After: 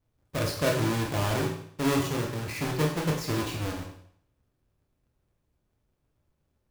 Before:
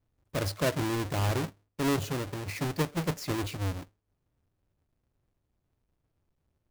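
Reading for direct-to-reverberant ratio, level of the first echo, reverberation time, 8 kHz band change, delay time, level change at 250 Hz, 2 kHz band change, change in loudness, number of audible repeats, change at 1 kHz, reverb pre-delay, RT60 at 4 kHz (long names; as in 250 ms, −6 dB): −0.5 dB, no echo audible, 0.60 s, +3.0 dB, no echo audible, +2.5 dB, +3.0 dB, +2.5 dB, no echo audible, +2.5 dB, 24 ms, 0.60 s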